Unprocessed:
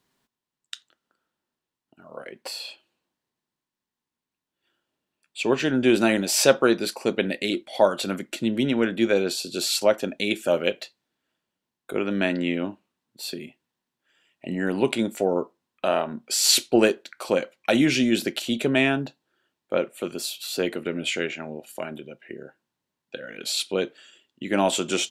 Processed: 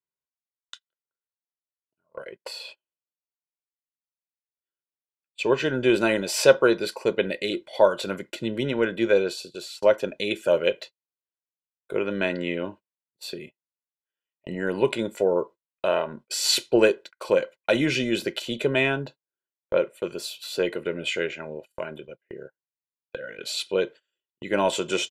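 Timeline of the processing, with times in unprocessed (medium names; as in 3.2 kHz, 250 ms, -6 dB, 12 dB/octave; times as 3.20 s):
9.16–9.82 s: fade out, to -17.5 dB
whole clip: gate -39 dBFS, range -27 dB; treble shelf 5.4 kHz -8.5 dB; comb 2 ms, depth 55%; trim -1 dB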